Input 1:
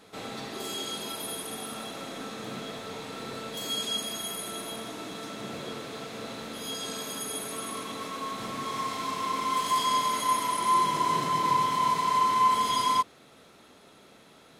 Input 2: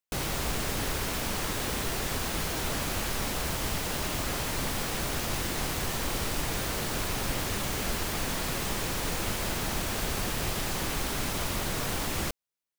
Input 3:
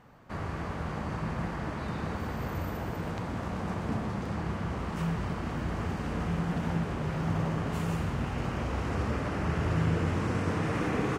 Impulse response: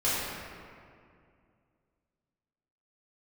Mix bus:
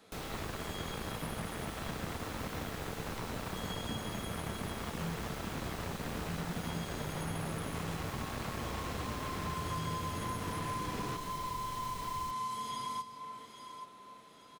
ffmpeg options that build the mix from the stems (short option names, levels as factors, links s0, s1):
-filter_complex "[0:a]volume=0.447,asplit=3[s0][s1][s2];[s1]volume=0.0891[s3];[s2]volume=0.133[s4];[1:a]volume=0.299[s5];[2:a]acrusher=bits=4:mix=0:aa=0.5,volume=0.891[s6];[3:a]atrim=start_sample=2205[s7];[s3][s7]afir=irnorm=-1:irlink=0[s8];[s4]aecho=0:1:830|1660|2490|3320|4150:1|0.36|0.13|0.0467|0.0168[s9];[s0][s5][s6][s8][s9]amix=inputs=5:normalize=0,acrossover=split=170|3600[s10][s11][s12];[s10]acompressor=threshold=0.00794:ratio=4[s13];[s11]acompressor=threshold=0.0112:ratio=4[s14];[s12]acompressor=threshold=0.00316:ratio=4[s15];[s13][s14][s15]amix=inputs=3:normalize=0"